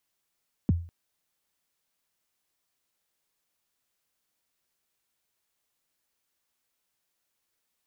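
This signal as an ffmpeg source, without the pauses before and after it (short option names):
-f lavfi -i "aevalsrc='0.158*pow(10,-3*t/0.4)*sin(2*PI*(290*0.022/log(85/290)*(exp(log(85/290)*min(t,0.022)/0.022)-1)+85*max(t-0.022,0)))':d=0.2:s=44100"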